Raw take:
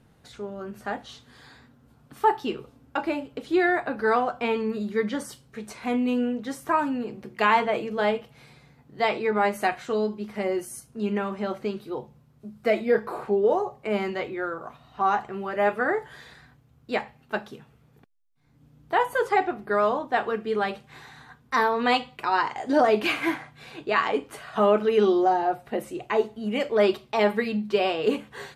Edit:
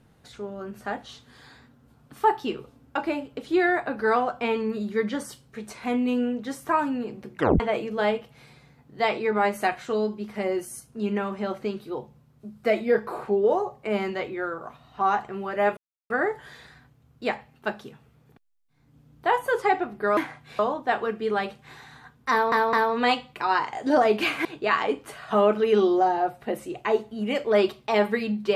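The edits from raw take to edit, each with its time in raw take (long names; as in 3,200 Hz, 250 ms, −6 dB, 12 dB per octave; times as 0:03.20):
0:07.35: tape stop 0.25 s
0:15.77: splice in silence 0.33 s
0:21.56: stutter 0.21 s, 3 plays
0:23.28–0:23.70: move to 0:19.84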